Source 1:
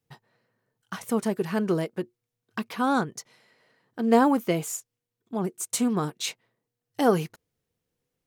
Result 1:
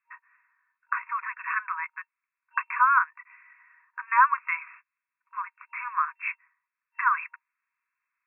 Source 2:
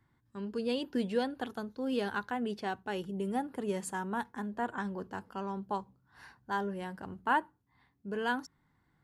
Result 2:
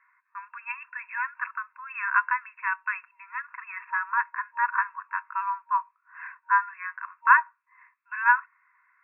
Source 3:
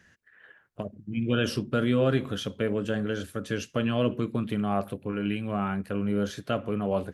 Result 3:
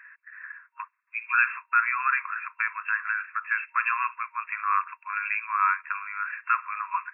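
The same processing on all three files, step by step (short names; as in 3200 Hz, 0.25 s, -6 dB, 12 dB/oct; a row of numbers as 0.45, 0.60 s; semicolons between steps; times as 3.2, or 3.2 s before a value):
FFT band-pass 940–2700 Hz; match loudness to -27 LUFS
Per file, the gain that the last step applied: +10.0, +15.0, +13.0 dB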